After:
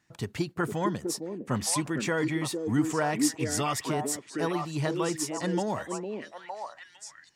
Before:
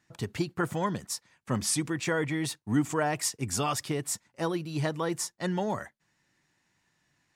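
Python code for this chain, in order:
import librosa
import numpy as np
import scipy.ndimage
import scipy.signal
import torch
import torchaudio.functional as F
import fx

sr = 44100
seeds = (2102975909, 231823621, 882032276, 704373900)

y = fx.echo_stepped(x, sr, ms=457, hz=330.0, octaves=1.4, feedback_pct=70, wet_db=0)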